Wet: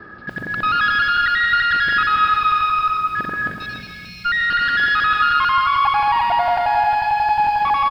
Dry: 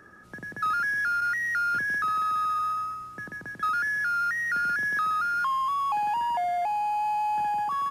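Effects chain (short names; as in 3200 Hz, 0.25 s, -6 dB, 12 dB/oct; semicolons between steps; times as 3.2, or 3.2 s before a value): local time reversal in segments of 90 ms; spectral delete 3.54–4.25, 240–2100 Hz; in parallel at +0.5 dB: limiter -26 dBFS, peak gain reduction 5.5 dB; on the sum: one-sided clip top -27 dBFS, bottom -19.5 dBFS; downsampling 11025 Hz; on a send at -7 dB: reverb RT60 1.4 s, pre-delay 0.103 s; on the sum: lo-fi delay 0.287 s, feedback 35%, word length 9-bit, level -8 dB; gain +6.5 dB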